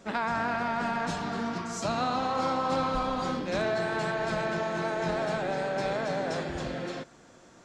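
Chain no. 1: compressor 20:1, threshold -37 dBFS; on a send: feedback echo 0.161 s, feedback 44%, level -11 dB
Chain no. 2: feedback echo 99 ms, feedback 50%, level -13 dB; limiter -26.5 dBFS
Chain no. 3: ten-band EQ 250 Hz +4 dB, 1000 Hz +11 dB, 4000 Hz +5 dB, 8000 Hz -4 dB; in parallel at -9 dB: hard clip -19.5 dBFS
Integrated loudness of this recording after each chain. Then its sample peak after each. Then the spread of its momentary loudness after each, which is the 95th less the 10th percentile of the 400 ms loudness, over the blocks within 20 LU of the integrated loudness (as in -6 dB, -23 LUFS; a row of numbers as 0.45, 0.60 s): -41.0, -35.0, -21.5 LUFS; -25.5, -26.5, -9.0 dBFS; 1, 2, 7 LU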